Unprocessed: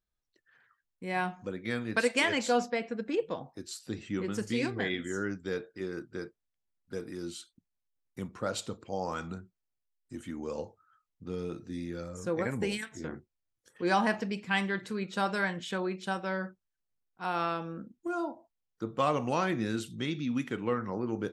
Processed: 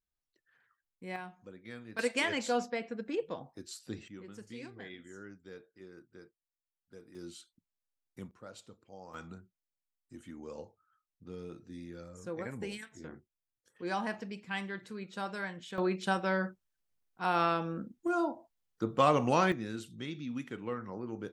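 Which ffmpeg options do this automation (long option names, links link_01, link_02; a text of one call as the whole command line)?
ffmpeg -i in.wav -af "asetnsamples=nb_out_samples=441:pad=0,asendcmd='1.16 volume volume -13dB;1.99 volume volume -4dB;4.08 volume volume -15dB;7.15 volume volume -7dB;8.31 volume volume -16dB;9.14 volume volume -8dB;15.78 volume volume 2.5dB;19.52 volume volume -7dB',volume=-6dB" out.wav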